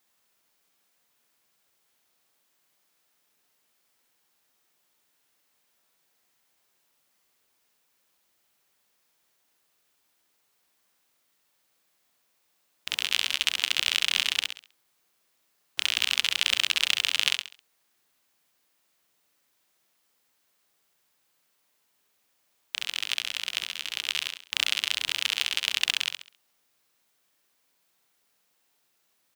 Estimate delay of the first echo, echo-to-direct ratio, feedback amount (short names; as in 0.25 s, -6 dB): 67 ms, -5.5 dB, 33%